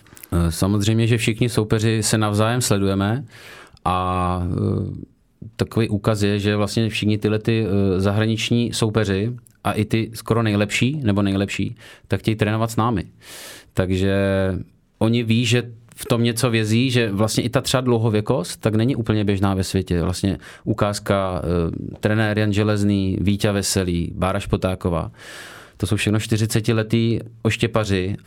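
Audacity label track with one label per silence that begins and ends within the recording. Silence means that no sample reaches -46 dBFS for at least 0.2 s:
5.110000	5.420000	silence
14.700000	15.010000	silence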